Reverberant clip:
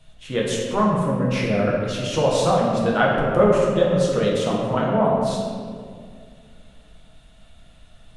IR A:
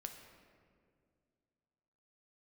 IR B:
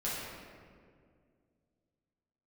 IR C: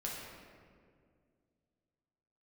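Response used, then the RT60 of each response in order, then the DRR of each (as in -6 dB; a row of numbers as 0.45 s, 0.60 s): C; 2.2 s, 2.1 s, 2.1 s; 4.5 dB, -9.5 dB, -4.5 dB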